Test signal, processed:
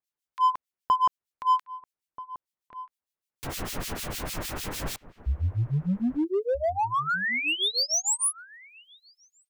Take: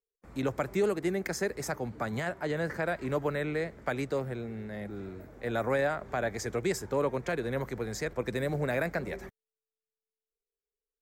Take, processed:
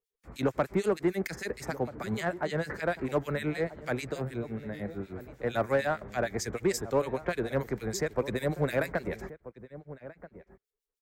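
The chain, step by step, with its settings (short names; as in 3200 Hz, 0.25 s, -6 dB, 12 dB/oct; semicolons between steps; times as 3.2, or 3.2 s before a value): harmonic tremolo 6.6 Hz, depth 100%, crossover 2000 Hz; in parallel at -4 dB: hard clip -29 dBFS; on the sum: outdoor echo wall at 220 m, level -15 dB; gain +1.5 dB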